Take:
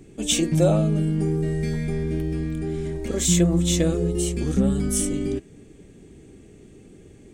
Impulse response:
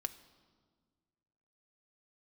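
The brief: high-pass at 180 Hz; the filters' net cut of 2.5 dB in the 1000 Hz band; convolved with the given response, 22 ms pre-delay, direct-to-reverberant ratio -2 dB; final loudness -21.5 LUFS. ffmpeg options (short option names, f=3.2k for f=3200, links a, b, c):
-filter_complex "[0:a]highpass=180,equalizer=f=1k:t=o:g=-4,asplit=2[a][b];[1:a]atrim=start_sample=2205,adelay=22[c];[b][c]afir=irnorm=-1:irlink=0,volume=3dB[d];[a][d]amix=inputs=2:normalize=0"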